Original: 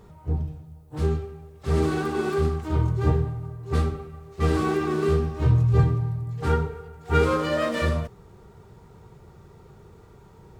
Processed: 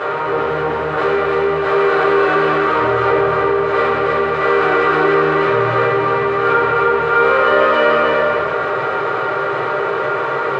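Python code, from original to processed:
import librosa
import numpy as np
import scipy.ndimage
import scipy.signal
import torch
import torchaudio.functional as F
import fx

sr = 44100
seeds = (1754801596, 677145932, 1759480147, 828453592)

p1 = fx.bin_compress(x, sr, power=0.4)
p2 = fx.bandpass_edges(p1, sr, low_hz=790.0, high_hz=2100.0)
p3 = p2 + fx.echo_single(p2, sr, ms=309, db=-3.5, dry=0)
p4 = fx.room_shoebox(p3, sr, seeds[0], volume_m3=78.0, walls='mixed', distance_m=2.4)
p5 = fx.env_flatten(p4, sr, amount_pct=50)
y = F.gain(torch.from_numpy(p5), -1.5).numpy()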